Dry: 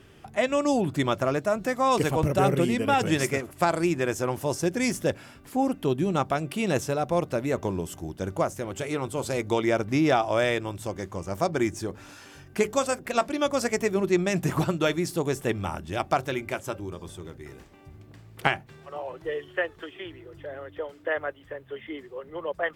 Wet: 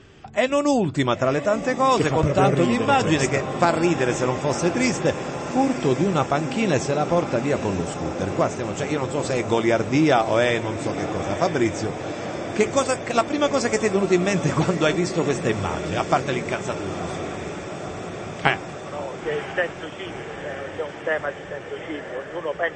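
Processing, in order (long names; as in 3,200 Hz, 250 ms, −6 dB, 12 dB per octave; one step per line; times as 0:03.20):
feedback delay with all-pass diffusion 989 ms, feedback 76%, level −11 dB
level +4.5 dB
MP3 32 kbit/s 24,000 Hz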